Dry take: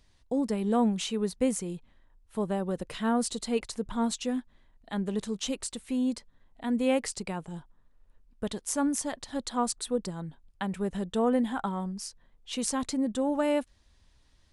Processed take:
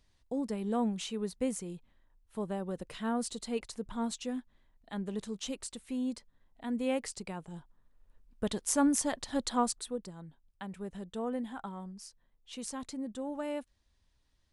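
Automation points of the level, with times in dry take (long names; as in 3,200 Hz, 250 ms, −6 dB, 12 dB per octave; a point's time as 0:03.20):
0:07.41 −6 dB
0:08.63 +1 dB
0:09.53 +1 dB
0:10.04 −10 dB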